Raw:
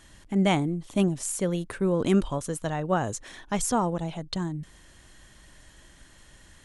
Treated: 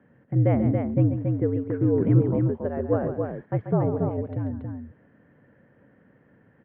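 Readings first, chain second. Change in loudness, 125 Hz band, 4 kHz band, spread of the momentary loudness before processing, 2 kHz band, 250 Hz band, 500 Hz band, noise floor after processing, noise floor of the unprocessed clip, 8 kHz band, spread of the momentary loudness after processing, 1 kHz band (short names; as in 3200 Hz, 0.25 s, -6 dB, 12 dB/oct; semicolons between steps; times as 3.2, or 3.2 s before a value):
+3.0 dB, +8.0 dB, under -25 dB, 9 LU, -8.5 dB, +2.0 dB, +3.0 dB, -60 dBFS, -54 dBFS, under -40 dB, 10 LU, -5.5 dB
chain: bell 210 Hz +4.5 dB 1 oct; wow and flutter 18 cents; on a send: loudspeakers at several distances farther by 47 m -10 dB, 96 m -5 dB; on the sum: mistuned SSB -69 Hz 200–2100 Hz; resonant low shelf 690 Hz +8 dB, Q 1.5; gain -6.5 dB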